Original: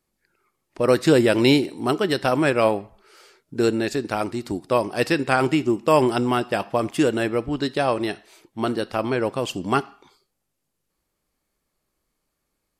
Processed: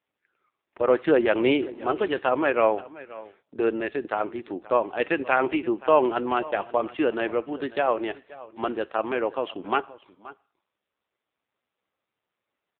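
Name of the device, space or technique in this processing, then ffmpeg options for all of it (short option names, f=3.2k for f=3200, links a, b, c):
satellite phone: -af "highpass=370,lowpass=3.3k,aecho=1:1:526:0.112" -ar 8000 -c:a libopencore_amrnb -b:a 5900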